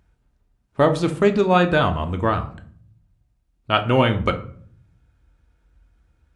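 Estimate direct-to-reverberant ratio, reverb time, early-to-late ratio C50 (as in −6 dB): 6.5 dB, 0.55 s, 13.5 dB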